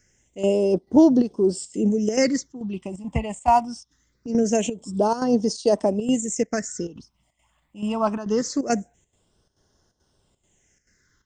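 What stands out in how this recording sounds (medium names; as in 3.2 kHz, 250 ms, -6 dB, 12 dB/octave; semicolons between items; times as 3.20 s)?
phasing stages 6, 0.23 Hz, lowest notch 410–2200 Hz; chopped level 2.3 Hz, depth 65%, duty 80%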